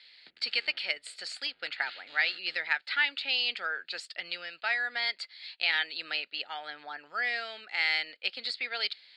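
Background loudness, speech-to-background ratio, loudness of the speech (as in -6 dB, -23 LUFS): -50.0 LUFS, 19.0 dB, -31.0 LUFS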